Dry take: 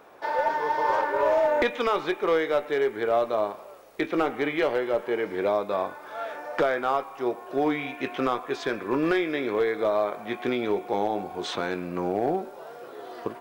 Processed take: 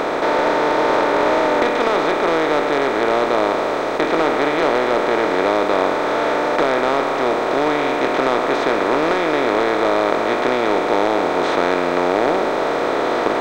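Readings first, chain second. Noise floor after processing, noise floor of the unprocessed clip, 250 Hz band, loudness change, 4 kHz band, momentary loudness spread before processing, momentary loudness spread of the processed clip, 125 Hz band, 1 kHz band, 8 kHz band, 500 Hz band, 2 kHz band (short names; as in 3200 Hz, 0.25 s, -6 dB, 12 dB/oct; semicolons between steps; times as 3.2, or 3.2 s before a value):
-20 dBFS, -44 dBFS, +8.5 dB, +9.0 dB, +11.5 dB, 9 LU, 2 LU, +7.0 dB, +10.5 dB, n/a, +8.5 dB, +10.5 dB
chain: per-bin compression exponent 0.2; gain -1.5 dB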